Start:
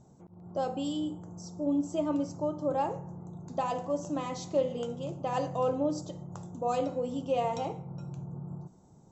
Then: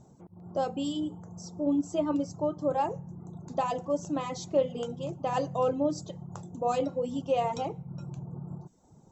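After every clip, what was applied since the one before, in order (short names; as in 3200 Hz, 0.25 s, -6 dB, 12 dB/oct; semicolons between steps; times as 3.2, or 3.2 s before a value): reverb removal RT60 0.65 s; gain +2.5 dB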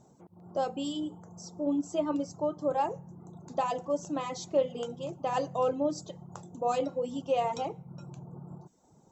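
low shelf 160 Hz -10.5 dB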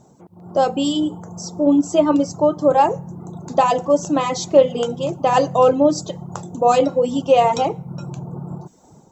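AGC gain up to 6 dB; gain +8.5 dB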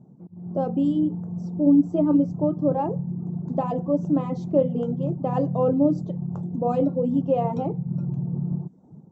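band-pass 170 Hz, Q 1.7; gain +5 dB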